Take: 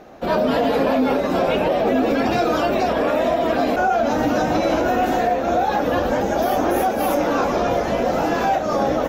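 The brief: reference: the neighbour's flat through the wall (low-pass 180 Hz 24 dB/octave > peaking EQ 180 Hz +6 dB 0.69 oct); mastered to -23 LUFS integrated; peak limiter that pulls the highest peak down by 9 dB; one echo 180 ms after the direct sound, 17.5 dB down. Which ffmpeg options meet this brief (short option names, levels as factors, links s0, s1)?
-af "alimiter=limit=0.141:level=0:latency=1,lowpass=f=180:w=0.5412,lowpass=f=180:w=1.3066,equalizer=f=180:t=o:w=0.69:g=6,aecho=1:1:180:0.133,volume=5.31"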